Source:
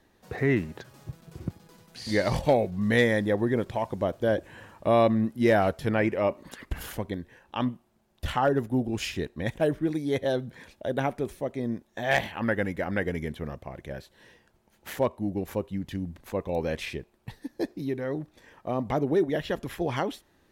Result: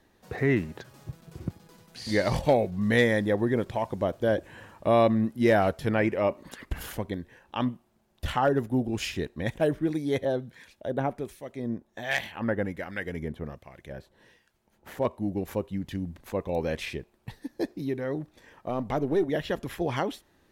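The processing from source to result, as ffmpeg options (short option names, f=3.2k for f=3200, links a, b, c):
-filter_complex "[0:a]asettb=1/sr,asplit=3[a][b][c];[a]atrim=end=10.254[d];[b]atrim=start=10.25:end=15.05,asetpts=PTS-STARTPTS,afade=t=in:d=0.004:c=qsin,afade=t=out:st=4.796:d=0.004:c=qsin,acrossover=split=1400[e][f];[e]aeval=exprs='val(0)*(1-0.7/2+0.7/2*cos(2*PI*1.3*n/s))':c=same[g];[f]aeval=exprs='val(0)*(1-0.7/2-0.7/2*cos(2*PI*1.3*n/s))':c=same[h];[g][h]amix=inputs=2:normalize=0[i];[c]atrim=start=15.046[j];[d][i]acrossfade=d=0.004:c1=hsin:c2=qsin[k];[k][j]acrossfade=d=0.004:c1=qsin:c2=hsin,asettb=1/sr,asplit=3[l][m][n];[l]atrim=end=18.694[o];[m]atrim=start=18.69:end=19.25,asetpts=PTS-STARTPTS,afade=t=in:d=0.004:c=qsin,afade=t=out:st=0.556:d=0.004:c=qsin,aeval=exprs='if(lt(val(0),0),0.708*val(0),val(0))':c=same[p];[n]atrim=start=19.246[q];[o][p]acrossfade=d=0.004:c1=hsin:c2=qsin[r];[r][q]acrossfade=d=0.004:c1=qsin:c2=hsin"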